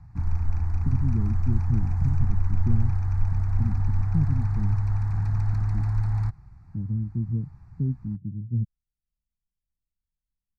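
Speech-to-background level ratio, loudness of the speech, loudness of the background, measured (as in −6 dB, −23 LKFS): −3.5 dB, −30.5 LKFS, −27.0 LKFS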